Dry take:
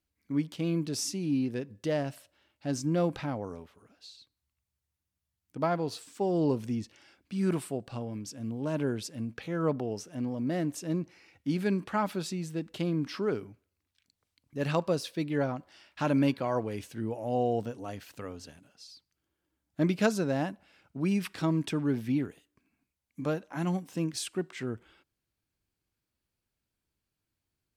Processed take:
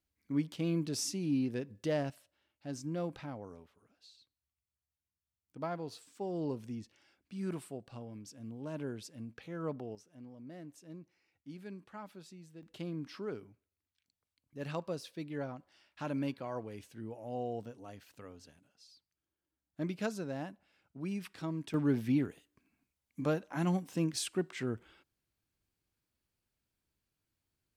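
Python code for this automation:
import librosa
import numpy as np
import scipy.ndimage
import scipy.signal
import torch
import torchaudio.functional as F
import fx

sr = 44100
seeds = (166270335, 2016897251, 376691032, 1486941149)

y = fx.gain(x, sr, db=fx.steps((0.0, -3.0), (2.1, -9.5), (9.95, -18.0), (12.63, -10.0), (21.74, -1.0)))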